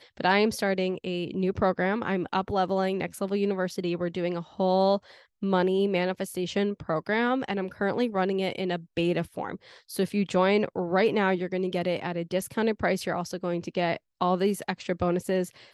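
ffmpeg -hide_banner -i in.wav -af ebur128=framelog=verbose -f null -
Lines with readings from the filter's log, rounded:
Integrated loudness:
  I:         -27.5 LUFS
  Threshold: -37.6 LUFS
Loudness range:
  LRA:         1.9 LU
  Threshold: -47.6 LUFS
  LRA low:   -28.6 LUFS
  LRA high:  -26.7 LUFS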